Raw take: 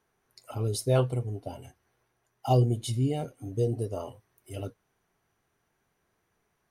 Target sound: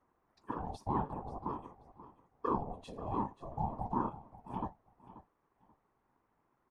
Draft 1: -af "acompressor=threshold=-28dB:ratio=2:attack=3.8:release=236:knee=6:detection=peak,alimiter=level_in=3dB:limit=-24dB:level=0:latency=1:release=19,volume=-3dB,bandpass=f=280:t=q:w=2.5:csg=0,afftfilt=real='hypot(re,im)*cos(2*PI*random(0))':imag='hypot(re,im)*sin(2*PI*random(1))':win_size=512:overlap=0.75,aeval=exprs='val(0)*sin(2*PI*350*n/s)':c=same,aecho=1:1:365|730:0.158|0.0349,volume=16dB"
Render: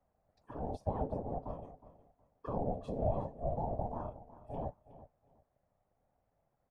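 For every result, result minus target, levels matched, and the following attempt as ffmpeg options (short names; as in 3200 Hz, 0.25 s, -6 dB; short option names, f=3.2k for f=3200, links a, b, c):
echo 0.169 s early; 500 Hz band +5.5 dB
-af "acompressor=threshold=-28dB:ratio=2:attack=3.8:release=236:knee=6:detection=peak,alimiter=level_in=3dB:limit=-24dB:level=0:latency=1:release=19,volume=-3dB,bandpass=f=280:t=q:w=2.5:csg=0,afftfilt=real='hypot(re,im)*cos(2*PI*random(0))':imag='hypot(re,im)*sin(2*PI*random(1))':win_size=512:overlap=0.75,aeval=exprs='val(0)*sin(2*PI*350*n/s)':c=same,aecho=1:1:534|1068:0.158|0.0349,volume=16dB"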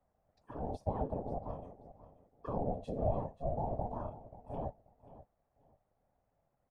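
500 Hz band +5.5 dB
-af "acompressor=threshold=-28dB:ratio=2:attack=3.8:release=236:knee=6:detection=peak,alimiter=level_in=3dB:limit=-24dB:level=0:latency=1:release=19,volume=-3dB,bandpass=f=630:t=q:w=2.5:csg=0,afftfilt=real='hypot(re,im)*cos(2*PI*random(0))':imag='hypot(re,im)*sin(2*PI*random(1))':win_size=512:overlap=0.75,aeval=exprs='val(0)*sin(2*PI*350*n/s)':c=same,aecho=1:1:534|1068:0.158|0.0349,volume=16dB"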